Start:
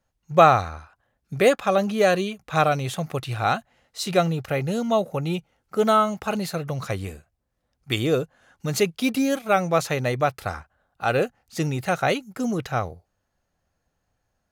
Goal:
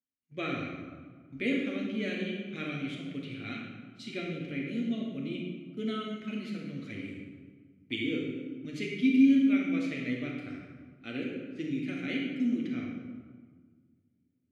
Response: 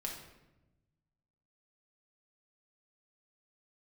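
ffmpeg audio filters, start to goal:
-filter_complex "[0:a]asplit=3[a][b][c];[a]bandpass=f=270:t=q:w=8,volume=0dB[d];[b]bandpass=f=2.29k:t=q:w=8,volume=-6dB[e];[c]bandpass=f=3.01k:t=q:w=8,volume=-9dB[f];[d][e][f]amix=inputs=3:normalize=0,agate=range=-11dB:threshold=-53dB:ratio=16:detection=peak[g];[1:a]atrim=start_sample=2205,asetrate=24255,aresample=44100[h];[g][h]afir=irnorm=-1:irlink=0"

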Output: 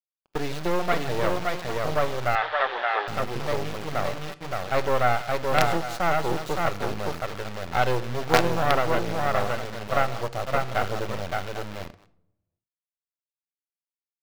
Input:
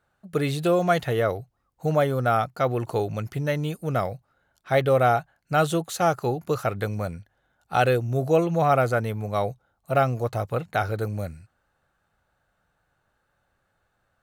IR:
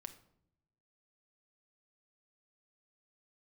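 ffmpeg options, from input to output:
-filter_complex "[0:a]aecho=1:1:151|569|799:0.106|0.708|0.224,acrossover=split=1300[a][b];[b]aeval=exprs='max(val(0),0)':c=same[c];[a][c]amix=inputs=2:normalize=0,acrusher=bits=3:dc=4:mix=0:aa=0.000001,asettb=1/sr,asplit=3[d][e][f];[d]atrim=end=2.354[g];[e]atrim=start=2.35:end=3.08,asetpts=PTS-STARTPTS,afade=t=in:d=0.004:c=qsin,afade=t=out:st=0.726:d=0.004:c=qsin,highpass=f=450:w=0.5412,highpass=f=450:w=1.3066,equalizer=f=500:t=q:w=4:g=-4,equalizer=f=900:t=q:w=4:g=3,equalizer=f=1.7k:t=q:w=4:g=10,equalizer=f=3.4k:t=q:w=4:g=7,lowpass=f=3.9k:w=0.5412,lowpass=f=3.9k:w=1.3066[h];[f]atrim=start=3.076[i];[g][h]acrossfade=d=0.004:c1=hsin:c2=qsin[j];[j][i]acrossfade=d=0.004:c1=qsin:c2=hsin,agate=range=-21dB:threshold=-36dB:ratio=16:detection=peak,asplit=2[k][l];[1:a]atrim=start_sample=2205,lowpass=5.9k,lowshelf=f=450:g=-12[m];[l][m]afir=irnorm=-1:irlink=0,volume=9dB[n];[k][n]amix=inputs=2:normalize=0,volume=-5dB"

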